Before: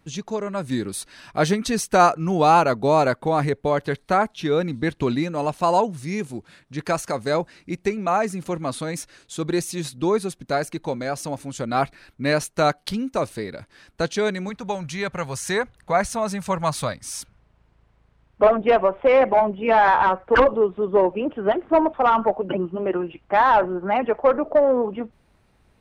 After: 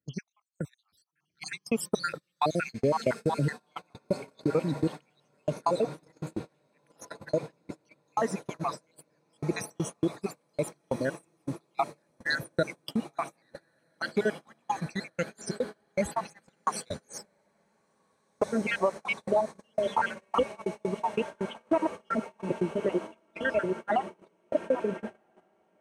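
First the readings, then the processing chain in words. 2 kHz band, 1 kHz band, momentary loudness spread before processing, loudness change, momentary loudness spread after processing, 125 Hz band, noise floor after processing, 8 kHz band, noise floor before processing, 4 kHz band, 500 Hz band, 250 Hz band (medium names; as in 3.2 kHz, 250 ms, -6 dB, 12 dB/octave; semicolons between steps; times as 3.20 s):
-8.5 dB, -13.0 dB, 13 LU, -10.0 dB, 13 LU, -7.5 dB, -73 dBFS, -10.0 dB, -61 dBFS, -9.0 dB, -10.5 dB, -8.0 dB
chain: random holes in the spectrogram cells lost 73%; compression 6:1, threshold -22 dBFS, peak gain reduction 10 dB; high-pass 72 Hz 24 dB/octave; on a send: echo that smears into a reverb 1438 ms, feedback 75%, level -12 dB; on the sum: gate -34 dBFS, range -28 dB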